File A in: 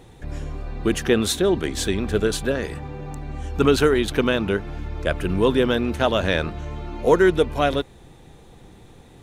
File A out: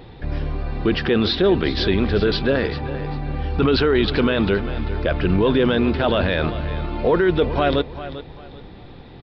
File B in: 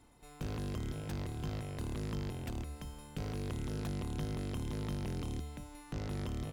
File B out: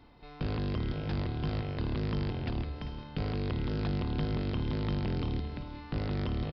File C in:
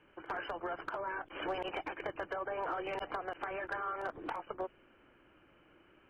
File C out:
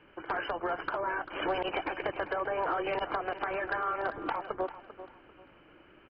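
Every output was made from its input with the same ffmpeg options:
ffmpeg -i in.wav -af "alimiter=limit=-15dB:level=0:latency=1:release=12,aecho=1:1:394|788|1182:0.211|0.0592|0.0166,aresample=11025,aresample=44100,volume=6dB" out.wav

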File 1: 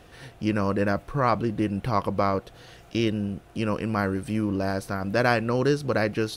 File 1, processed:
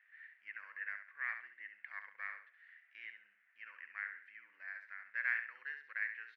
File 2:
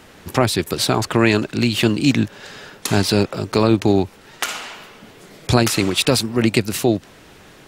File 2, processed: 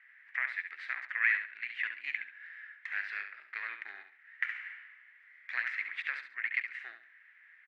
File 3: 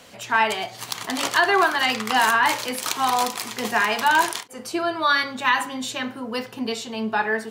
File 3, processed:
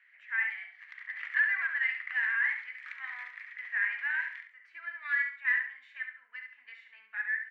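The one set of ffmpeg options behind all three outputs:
ffmpeg -i in.wav -filter_complex "[0:a]aeval=exprs='0.891*(cos(1*acos(clip(val(0)/0.891,-1,1)))-cos(1*PI/2))+0.141*(cos(3*acos(clip(val(0)/0.891,-1,1)))-cos(3*PI/2))+0.0398*(cos(6*acos(clip(val(0)/0.891,-1,1)))-cos(6*PI/2))':channel_layout=same,asuperpass=centerf=1900:order=4:qfactor=3.9,asplit=2[link_01][link_02];[link_02]aecho=0:1:69|138|207:0.398|0.115|0.0335[link_03];[link_01][link_03]amix=inputs=2:normalize=0,volume=1.5dB" out.wav

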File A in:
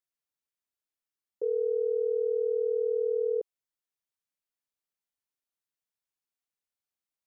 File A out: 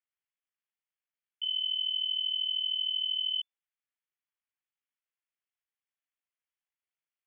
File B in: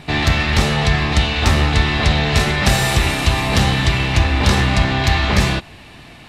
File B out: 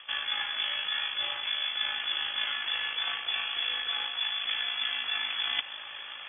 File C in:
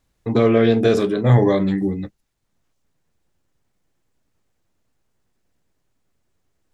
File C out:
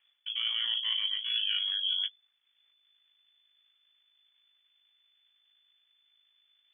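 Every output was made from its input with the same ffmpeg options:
ffmpeg -i in.wav -af "areverse,acompressor=threshold=-27dB:ratio=16,areverse,lowpass=frequency=3000:width_type=q:width=0.5098,lowpass=frequency=3000:width_type=q:width=0.6013,lowpass=frequency=3000:width_type=q:width=0.9,lowpass=frequency=3000:width_type=q:width=2.563,afreqshift=-3500,tremolo=f=53:d=0.462,equalizer=frequency=2100:width=0.62:gain=10.5,volume=-7dB" out.wav

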